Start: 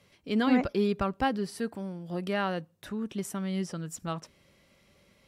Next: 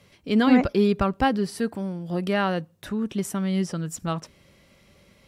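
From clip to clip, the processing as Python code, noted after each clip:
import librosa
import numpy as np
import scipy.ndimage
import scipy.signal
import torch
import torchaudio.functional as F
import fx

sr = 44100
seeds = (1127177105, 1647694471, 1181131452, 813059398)

y = fx.low_shelf(x, sr, hz=190.0, db=3.5)
y = F.gain(torch.from_numpy(y), 5.5).numpy()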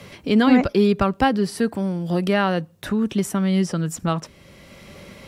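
y = fx.band_squash(x, sr, depth_pct=40)
y = F.gain(torch.from_numpy(y), 4.0).numpy()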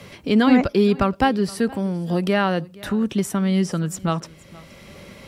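y = x + 10.0 ** (-22.0 / 20.0) * np.pad(x, (int(471 * sr / 1000.0), 0))[:len(x)]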